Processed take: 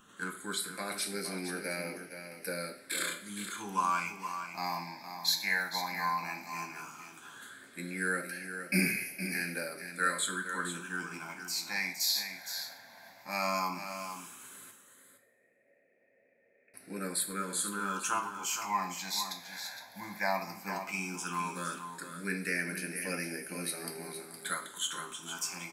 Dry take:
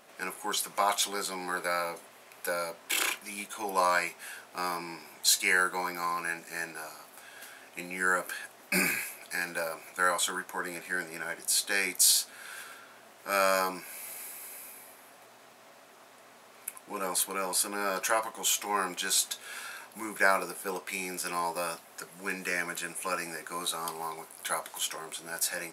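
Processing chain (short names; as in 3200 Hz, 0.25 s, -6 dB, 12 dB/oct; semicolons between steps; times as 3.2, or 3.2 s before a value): low shelf 250 Hz +9 dB; in parallel at -3 dB: vocal rider within 3 dB 0.5 s; 14.71–16.74 on the sum: vocal tract filter e; phaser stages 8, 0.14 Hz, lowest notch 380–1100 Hz; echo 0.464 s -9 dB; two-slope reverb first 0.49 s, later 2 s, from -20 dB, DRR 5.5 dB; gain -7.5 dB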